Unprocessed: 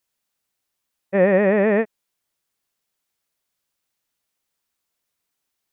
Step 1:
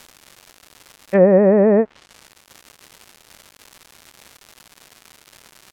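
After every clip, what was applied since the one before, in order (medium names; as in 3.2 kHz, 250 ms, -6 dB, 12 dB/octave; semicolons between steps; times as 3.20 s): crackle 290 per s -34 dBFS; low-pass that closes with the level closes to 870 Hz, closed at -15 dBFS; trim +5 dB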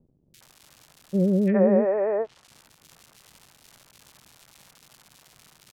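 peaking EQ 140 Hz +7.5 dB 0.69 oct; three bands offset in time lows, highs, mids 340/410 ms, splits 410/1900 Hz; trim -6 dB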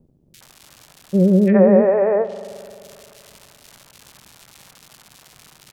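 spring tank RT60 2.5 s, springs 43 ms, chirp 35 ms, DRR 13.5 dB; trim +7 dB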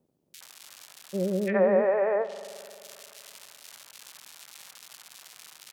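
high-pass 1.3 kHz 6 dB/octave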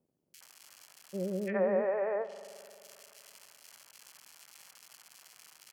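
band-stop 3.7 kHz, Q 5.7; trim -7 dB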